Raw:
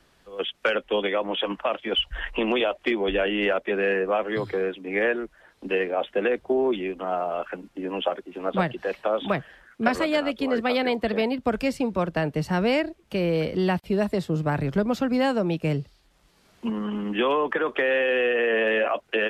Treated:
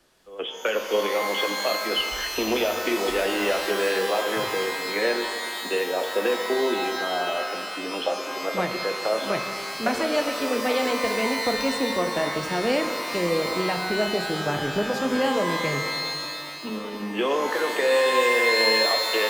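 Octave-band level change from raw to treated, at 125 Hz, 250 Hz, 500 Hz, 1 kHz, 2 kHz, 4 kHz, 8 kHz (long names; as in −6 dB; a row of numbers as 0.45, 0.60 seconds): −6.5 dB, −3.0 dB, 0.0 dB, +3.0 dB, +2.5 dB, +5.5 dB, can't be measured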